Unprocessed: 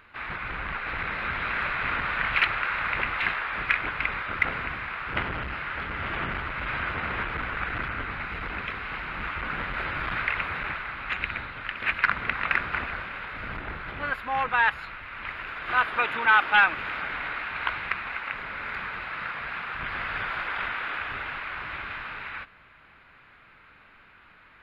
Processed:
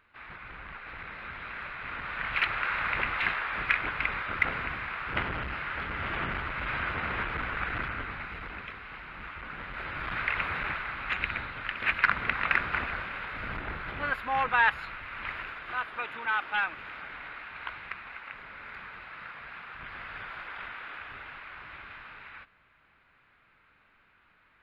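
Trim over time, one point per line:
1.82 s -11 dB
2.68 s -2 dB
7.78 s -2 dB
8.83 s -9.5 dB
9.56 s -9.5 dB
10.44 s -1 dB
15.38 s -1 dB
15.78 s -10 dB

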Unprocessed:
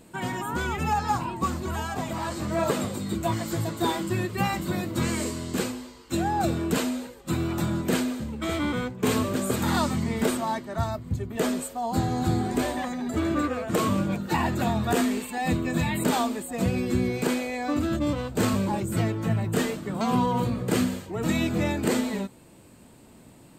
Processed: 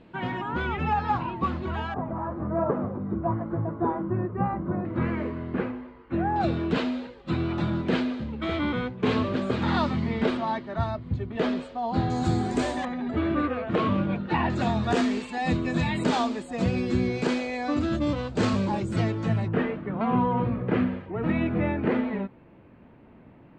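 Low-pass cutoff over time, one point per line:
low-pass 24 dB/octave
3.4 kHz
from 1.94 s 1.3 kHz
from 4.85 s 2.1 kHz
from 6.36 s 4 kHz
from 12.10 s 7.5 kHz
from 12.85 s 3.4 kHz
from 14.50 s 5.9 kHz
from 19.48 s 2.4 kHz

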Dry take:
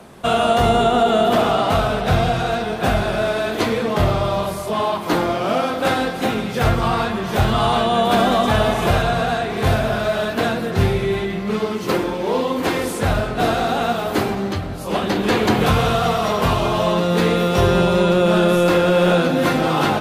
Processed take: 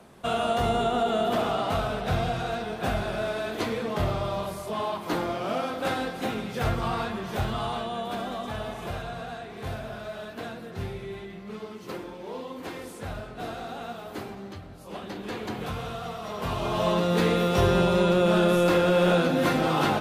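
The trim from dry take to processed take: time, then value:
7.17 s -9.5 dB
8.22 s -17 dB
16.22 s -17 dB
16.87 s -6 dB

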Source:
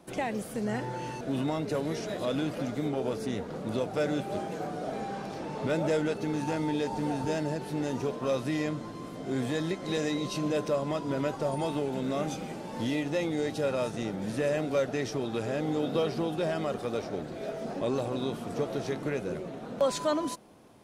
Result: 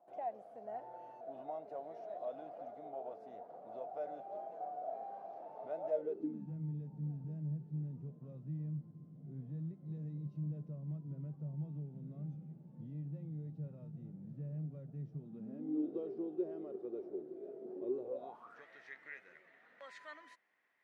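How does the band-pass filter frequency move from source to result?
band-pass filter, Q 10
5.89 s 700 Hz
6.53 s 150 Hz
15.15 s 150 Hz
15.96 s 370 Hz
18.00 s 370 Hz
18.65 s 1.9 kHz

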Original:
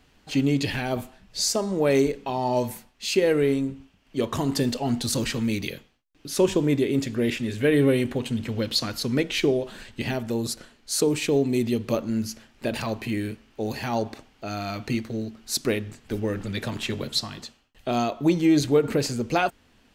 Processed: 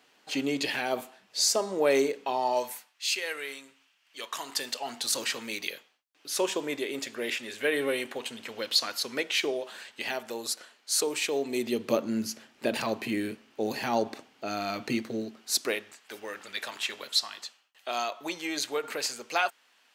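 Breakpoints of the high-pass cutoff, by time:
2.32 s 420 Hz
3.06 s 1.4 kHz
4.21 s 1.4 kHz
5.24 s 640 Hz
11.32 s 640 Hz
11.96 s 240 Hz
15.16 s 240 Hz
16.00 s 890 Hz

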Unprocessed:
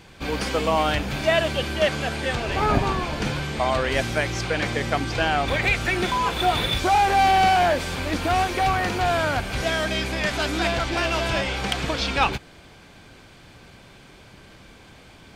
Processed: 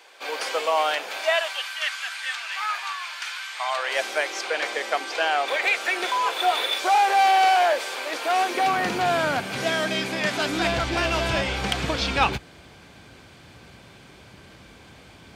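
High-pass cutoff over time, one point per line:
high-pass 24 dB/octave
1.09 s 480 Hz
1.80 s 1.2 kHz
3.47 s 1.2 kHz
4.06 s 440 Hz
8.28 s 440 Hz
8.88 s 140 Hz
10.42 s 140 Hz
10.83 s 50 Hz

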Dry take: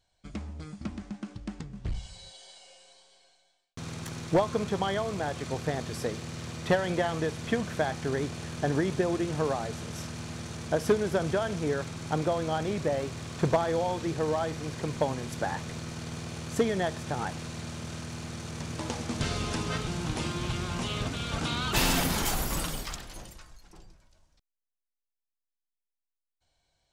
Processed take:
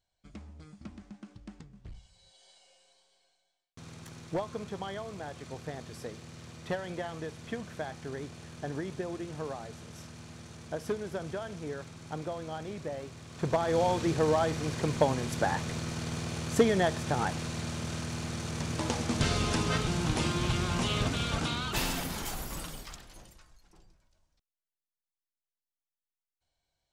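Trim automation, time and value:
1.56 s -9 dB
2.11 s -16.5 dB
2.48 s -9 dB
13.27 s -9 dB
13.83 s +2.5 dB
21.22 s +2.5 dB
21.96 s -8 dB

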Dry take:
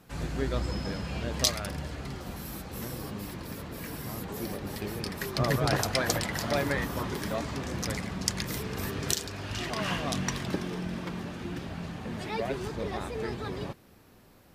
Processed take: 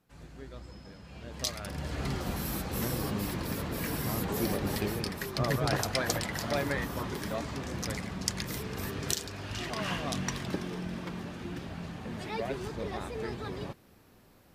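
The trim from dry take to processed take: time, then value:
0.99 s -15.5 dB
1.65 s -4.5 dB
2.04 s +5 dB
4.75 s +5 dB
5.26 s -2.5 dB

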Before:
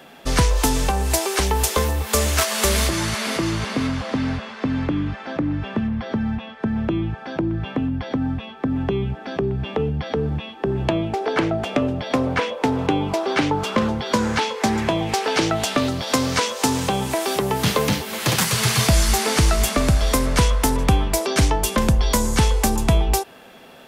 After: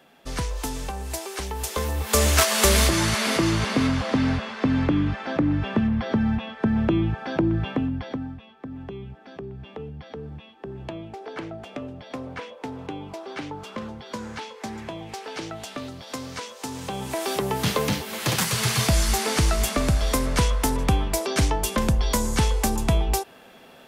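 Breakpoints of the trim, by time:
1.55 s -11 dB
2.26 s +1 dB
7.57 s +1 dB
8.12 s -6 dB
8.38 s -14 dB
16.66 s -14 dB
17.26 s -4 dB

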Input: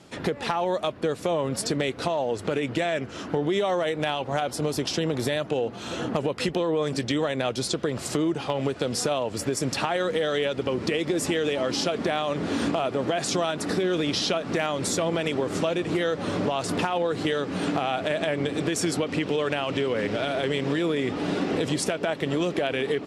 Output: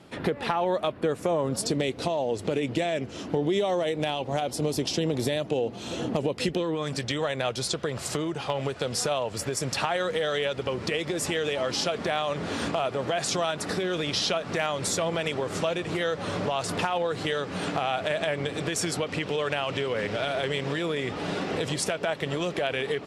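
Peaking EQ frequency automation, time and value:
peaking EQ -8 dB 0.99 oct
0.95 s 6.6 kHz
1.77 s 1.4 kHz
6.38 s 1.4 kHz
7.01 s 280 Hz

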